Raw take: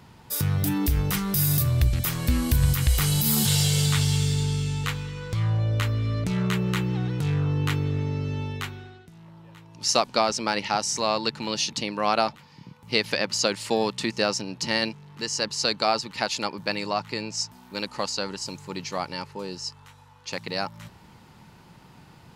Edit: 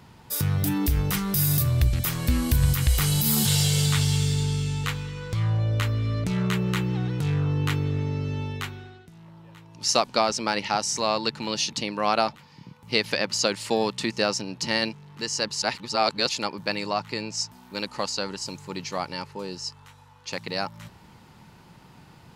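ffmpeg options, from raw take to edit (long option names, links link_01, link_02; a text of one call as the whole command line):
ffmpeg -i in.wav -filter_complex "[0:a]asplit=3[link_01][link_02][link_03];[link_01]atrim=end=15.622[link_04];[link_02]atrim=start=15.618:end=16.292,asetpts=PTS-STARTPTS,areverse[link_05];[link_03]atrim=start=16.288[link_06];[link_04][link_05]acrossfade=duration=0.004:curve1=hsin:curve2=hsin[link_07];[link_07][link_06]acrossfade=duration=0.004:curve1=hsin:curve2=hsin" out.wav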